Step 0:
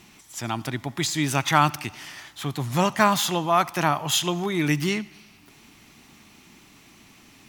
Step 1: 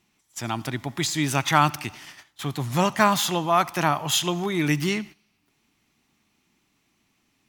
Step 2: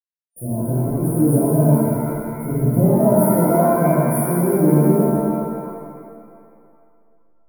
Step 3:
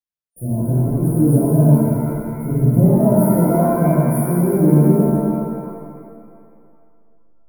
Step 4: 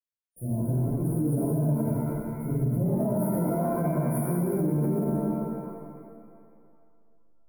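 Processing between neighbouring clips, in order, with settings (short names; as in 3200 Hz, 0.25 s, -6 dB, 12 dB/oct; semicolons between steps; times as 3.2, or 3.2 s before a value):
gate -39 dBFS, range -17 dB
level-crossing sampler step -37 dBFS; FFT band-reject 720–9200 Hz; shimmer reverb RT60 2.2 s, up +7 st, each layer -8 dB, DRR -10.5 dB; gain -1 dB
low shelf 290 Hz +9 dB; gain -3.5 dB
limiter -10.5 dBFS, peak gain reduction 9 dB; gain -8 dB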